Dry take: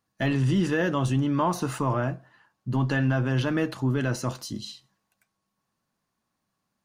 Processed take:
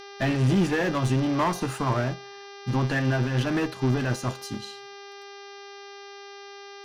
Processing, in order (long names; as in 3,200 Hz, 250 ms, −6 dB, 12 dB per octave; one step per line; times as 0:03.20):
hum with harmonics 400 Hz, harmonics 15, −41 dBFS −4 dB per octave
asymmetric clip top −27.5 dBFS, bottom −18 dBFS
expander for the loud parts 1.5 to 1, over −37 dBFS
level +4.5 dB